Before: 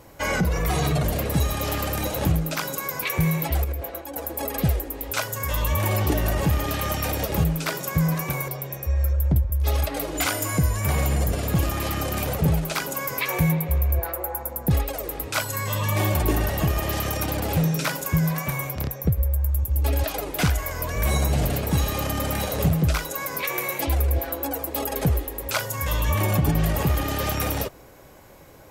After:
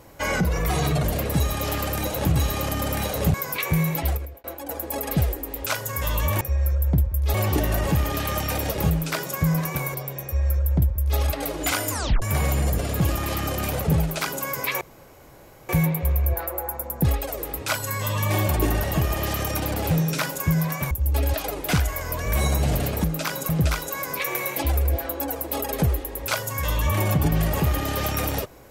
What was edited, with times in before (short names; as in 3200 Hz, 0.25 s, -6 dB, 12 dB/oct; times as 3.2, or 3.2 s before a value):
2.36–2.81 swap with 21.74–22.72
3.54–3.91 fade out
8.79–9.72 copy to 5.88
10.45 tape stop 0.31 s
13.35 insert room tone 0.88 s
18.57–19.61 cut